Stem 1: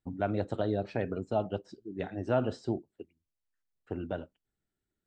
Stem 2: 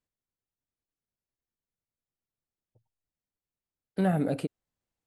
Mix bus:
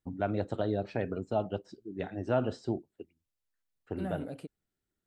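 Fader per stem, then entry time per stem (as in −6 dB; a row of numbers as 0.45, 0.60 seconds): −0.5, −12.0 decibels; 0.00, 0.00 seconds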